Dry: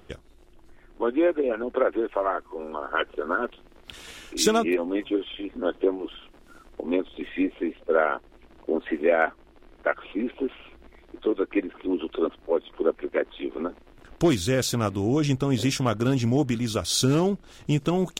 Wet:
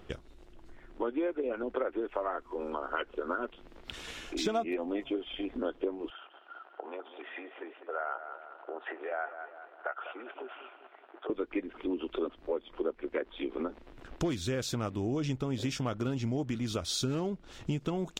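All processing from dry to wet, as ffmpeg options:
-filter_complex "[0:a]asettb=1/sr,asplit=3[s0][s1][s2];[s0]atrim=end=4.254[s3];[s1]atrim=start=4.25:end=5.55,asetpts=PTS-STARTPTS,afade=t=in:d=0.004:c=qsin,afade=t=out:st=1.296:d=0.004:c=qsin,acrossover=split=4200[s4][s5];[s5]acompressor=threshold=0.0141:ratio=4:attack=1:release=60[s6];[s4][s6]amix=inputs=2:normalize=0,equalizer=f=700:w=7.1:g=9.5[s7];[s2]atrim=start=5.546[s8];[s3][s7]acrossfade=d=0.004:c1=hsin:c2=qsin[s9];[s9][s8]acrossfade=d=0.004:c1=qsin:c2=hsin,asettb=1/sr,asplit=3[s10][s11][s12];[s10]atrim=end=6.104[s13];[s11]atrim=start=6.1:end=11.3,asetpts=PTS-STARTPTS,afade=t=in:d=0.004:c=qsin,afade=t=out:st=5.196:d=0.004:c=qsin,acompressor=threshold=0.0355:ratio=4:attack=3.2:release=140:knee=1:detection=peak,highpass=f=470:w=0.5412,highpass=f=470:w=1.3066,equalizer=f=510:t=q:w=4:g=-6,equalizer=f=740:t=q:w=4:g=6,equalizer=f=1400:t=q:w=4:g=6,equalizer=f=2200:t=q:w=4:g=-8,lowpass=f=2800:w=0.5412,lowpass=f=2800:w=1.3066,aecho=1:1:199|398|597|796|995:0.237|0.111|0.0524|0.0246|0.0116,atrim=end_sample=229320[s14];[s12]atrim=start=11.296[s15];[s13][s14]acrossfade=d=0.004:c1=hsin:c2=qsin[s16];[s16][s15]acrossfade=d=0.004:c1=qsin:c2=hsin,equalizer=f=11000:t=o:w=0.65:g=-5.5,acompressor=threshold=0.0251:ratio=3,highshelf=f=8600:g=-4.5"

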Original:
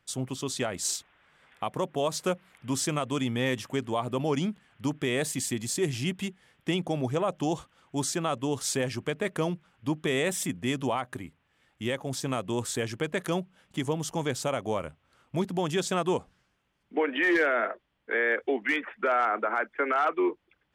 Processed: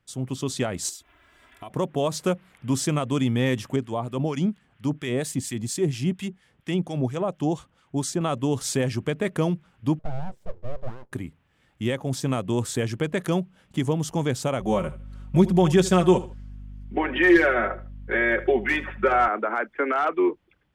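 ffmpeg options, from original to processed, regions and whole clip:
-filter_complex "[0:a]asettb=1/sr,asplit=3[s0][s1][s2];[s0]atrim=end=0.894[s3];[s1]atrim=start=0.89:end=1.7,asetpts=PTS-STARTPTS,afade=t=in:d=0.004:c=qsin,afade=t=out:st=0.806:d=0.004:c=qsin,highshelf=f=9100:g=10,aecho=1:1:3:0.93,atrim=end_sample=35721,acompressor=threshold=0.00355:ratio=2:attack=3.2:release=140:knee=1:detection=peak[s4];[s2]atrim=start=1.696[s5];[s3][s4]acrossfade=d=0.004:c1=hsin:c2=qsin[s6];[s6][s5]acrossfade=d=0.004:c1=qsin:c2=hsin,asettb=1/sr,asplit=3[s7][s8][s9];[s7]atrim=end=3.764[s10];[s8]atrim=start=3.76:end=8.21,asetpts=PTS-STARTPTS,afade=t=in:d=0.004:c=qsin,afade=t=out:st=4.446:d=0.004:c=qsin,equalizer=f=12000:w=5.2:g=-3.5,acrossover=split=1100[s11][s12];[s11]aeval=exprs='val(0)*(1-0.7/2+0.7/2*cos(2*PI*4.3*n/s))':c=same[s13];[s12]aeval=exprs='val(0)*(1-0.7/2-0.7/2*cos(2*PI*4.3*n/s))':c=same[s14];[s13][s14]amix=inputs=2:normalize=0[s15];[s9]atrim=start=8.206[s16];[s10][s15]acrossfade=d=0.004:c1=hsin:c2=qsin[s17];[s17][s16]acrossfade=d=0.004:c1=qsin:c2=hsin,asettb=1/sr,asplit=3[s18][s19][s20];[s18]atrim=end=9.994[s21];[s19]atrim=start=9.99:end=11.12,asetpts=PTS-STARTPTS,afade=t=in:d=0.004:c=qsin,afade=t=out:st=1.126:d=0.004:c=qsin,bandpass=f=310:t=q:w=3.6,aeval=exprs='abs(val(0))':c=same[s22];[s20]atrim=start=11.116[s23];[s21][s22]acrossfade=d=0.004:c1=hsin:c2=qsin[s24];[s24][s23]acrossfade=d=0.004:c1=qsin:c2=hsin,asettb=1/sr,asplit=3[s25][s26][s27];[s25]atrim=end=14.604[s28];[s26]atrim=start=14.6:end=19.28,asetpts=PTS-STARTPTS,afade=t=in:d=0.004:c=qsin,afade=t=out:st=4.676:d=0.004:c=qsin,aecho=1:1:5.4:1,atrim=end_sample=206388,aeval=exprs='val(0)+0.00447*(sin(2*PI*50*n/s)+sin(2*PI*2*50*n/s)/2+sin(2*PI*3*50*n/s)/3+sin(2*PI*4*50*n/s)/4+sin(2*PI*5*50*n/s)/5)':c=same,aecho=1:1:77|154:0.141|0.0353,atrim=end_sample=206388[s29];[s27]atrim=start=19.276[s30];[s28][s29]acrossfade=d=0.004:c1=hsin:c2=qsin[s31];[s31][s30]acrossfade=d=0.004:c1=qsin:c2=hsin,dynaudnorm=f=180:g=3:m=2,lowshelf=f=320:g=8.5,volume=0.562"

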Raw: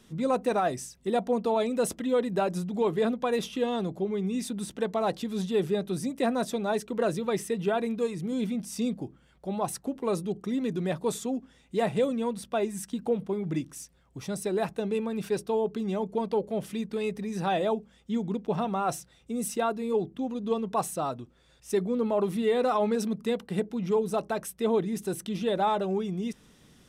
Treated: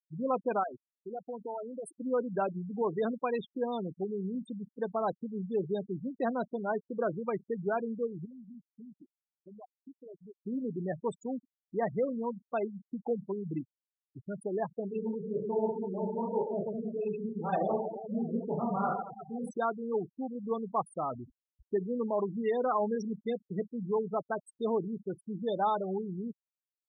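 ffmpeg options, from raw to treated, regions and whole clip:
-filter_complex "[0:a]asettb=1/sr,asplit=3[s0][s1][s2];[s0]atrim=end=0.634[s3];[s1]atrim=start=0.63:end=1.92,asetpts=PTS-STARTPTS,afade=t=in:d=0.004:c=qsin,afade=t=out:st=1.286:d=0.004:c=qsin,acompressor=threshold=0.0398:ratio=8:attack=3.2:release=140:knee=1:detection=peak,lowshelf=f=210:g=-11.5[s4];[s2]atrim=start=1.916[s5];[s3][s4]acrossfade=d=0.004:c1=hsin:c2=qsin[s6];[s6][s5]acrossfade=d=0.004:c1=qsin:c2=hsin,asettb=1/sr,asplit=3[s7][s8][s9];[s7]atrim=end=8.254[s10];[s8]atrim=start=8.25:end=10.43,asetpts=PTS-STARTPTS,afade=t=in:d=0.004:c=qsin,afade=t=out:st=2.176:d=0.004:c=qsin,acompressor=threshold=0.0112:ratio=5:attack=3.2:release=140:knee=1:detection=peak,equalizer=f=130:t=o:w=0.65:g=-10[s11];[s9]atrim=start=10.426[s12];[s10][s11]acrossfade=d=0.004:c1=hsin:c2=qsin[s13];[s13][s12]acrossfade=d=0.004:c1=qsin:c2=hsin,asettb=1/sr,asplit=3[s14][s15][s16];[s14]atrim=end=14.884[s17];[s15]atrim=start=14.88:end=19.51,asetpts=PTS-STARTPTS,afade=t=in:d=0.004:c=qsin,afade=t=out:st=4.626:d=0.004:c=qsin,lowshelf=f=390:g=2.5,aecho=1:1:30|72|130.8|213.1|328.4|489.7|715.6:0.794|0.631|0.501|0.398|0.316|0.251|0.2,atrim=end_sample=204183,flanger=delay=6:depth=8.5:regen=-25:speed=1.9:shape=triangular[s18];[s16]atrim=start=19.506[s19];[s17][s18]acrossfade=d=0.004:c1=hsin:c2=qsin[s20];[s20][s19]acrossfade=d=0.004:c1=qsin:c2=hsin,asettb=1/sr,asplit=3[s21][s22][s23];[s21]atrim=end=21.114[s24];[s22]atrim=start=21.11:end=21.77,asetpts=PTS-STARTPTS,afade=t=in:d=0.004:c=qsin,afade=t=out:st=0.656:d=0.004:c=qsin,aeval=exprs='val(0)+0.5*0.0106*sgn(val(0))':c=same,aemphasis=mode=reproduction:type=75fm[s25];[s23]atrim=start=21.766[s26];[s24][s25]acrossfade=d=0.004:c1=hsin:c2=qsin[s27];[s27][s26]acrossfade=d=0.004:c1=qsin:c2=hsin,afftfilt=real='re*gte(hypot(re,im),0.0562)':imag='im*gte(hypot(re,im),0.0562)':win_size=1024:overlap=0.75,equalizer=f=1400:t=o:w=2:g=5,volume=0.501"

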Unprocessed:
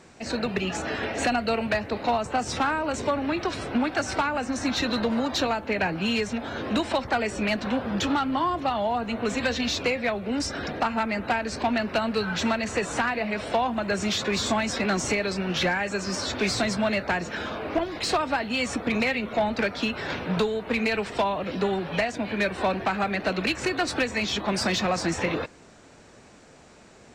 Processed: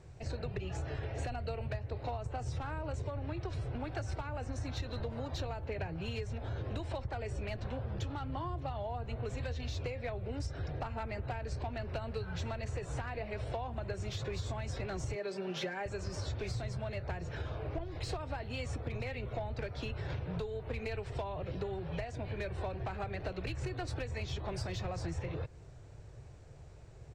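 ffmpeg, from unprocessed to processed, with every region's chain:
-filter_complex "[0:a]asettb=1/sr,asplit=3[s0][s1][s2];[s0]atrim=end=15.154[s3];[s1]atrim=start=15.15:end=15.86,asetpts=PTS-STARTPTS,afade=t=in:d=0.004:c=qsin,afade=t=out:st=0.706:d=0.004:c=qsin,highpass=f=200:w=0.5412,highpass=f=200:w=1.3066,aecho=1:1:5.1:0.73,atrim=end_sample=31311[s4];[s2]atrim=start=15.856[s5];[s3][s4]acrossfade=d=0.004:c1=hsin:c2=qsin[s6];[s6][s5]acrossfade=d=0.004:c1=qsin:c2=hsin,firequalizer=gain_entry='entry(130,0);entry(200,-27);entry(380,-16);entry(1200,-23)':delay=0.05:min_phase=1,acompressor=threshold=0.00631:ratio=6,volume=2.99"

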